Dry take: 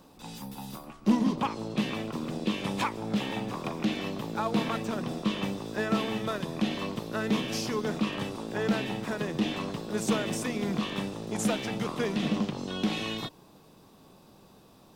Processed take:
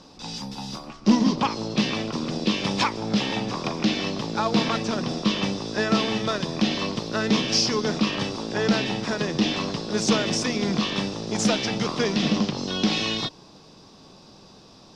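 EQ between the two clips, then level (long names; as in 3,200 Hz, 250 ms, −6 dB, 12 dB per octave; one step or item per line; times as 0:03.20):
low-pass with resonance 5,300 Hz, resonance Q 3.7
+5.5 dB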